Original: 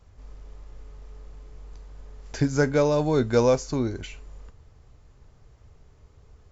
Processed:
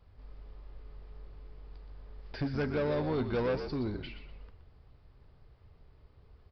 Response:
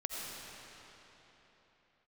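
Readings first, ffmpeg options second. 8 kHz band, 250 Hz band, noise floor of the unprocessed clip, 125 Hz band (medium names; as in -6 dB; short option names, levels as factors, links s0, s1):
no reading, -8.5 dB, -55 dBFS, -9.0 dB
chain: -filter_complex "[0:a]aresample=11025,asoftclip=type=tanh:threshold=0.0841,aresample=44100,asplit=5[s0][s1][s2][s3][s4];[s1]adelay=122,afreqshift=-55,volume=0.355[s5];[s2]adelay=244,afreqshift=-110,volume=0.114[s6];[s3]adelay=366,afreqshift=-165,volume=0.0363[s7];[s4]adelay=488,afreqshift=-220,volume=0.0116[s8];[s0][s5][s6][s7][s8]amix=inputs=5:normalize=0,volume=0.531"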